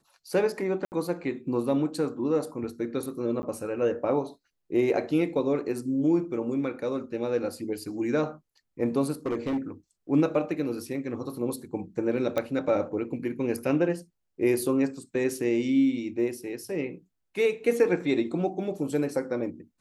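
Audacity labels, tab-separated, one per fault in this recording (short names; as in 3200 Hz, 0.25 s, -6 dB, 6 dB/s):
0.850000	0.920000	gap 69 ms
3.420000	3.430000	gap 10 ms
9.260000	9.580000	clipped -24 dBFS
12.380000	12.380000	pop -15 dBFS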